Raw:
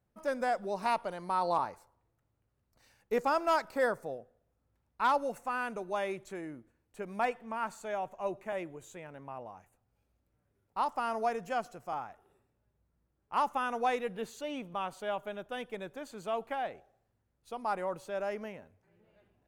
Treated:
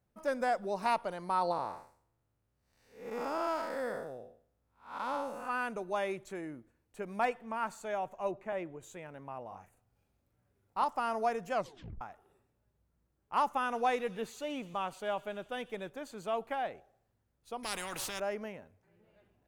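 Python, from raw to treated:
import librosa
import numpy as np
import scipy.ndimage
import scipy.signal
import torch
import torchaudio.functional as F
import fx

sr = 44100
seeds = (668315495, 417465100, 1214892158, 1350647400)

y = fx.spec_blur(x, sr, span_ms=227.0, at=(1.51, 5.48), fade=0.02)
y = fx.lowpass(y, sr, hz=2700.0, slope=6, at=(8.31, 8.83))
y = fx.doubler(y, sr, ms=41.0, db=-4.0, at=(9.47, 10.84))
y = fx.echo_wet_highpass(y, sr, ms=124, feedback_pct=76, hz=3100.0, wet_db=-15.5, at=(13.61, 15.89), fade=0.02)
y = fx.spectral_comp(y, sr, ratio=4.0, at=(17.63, 18.2))
y = fx.edit(y, sr, fx.tape_stop(start_s=11.54, length_s=0.47), tone=tone)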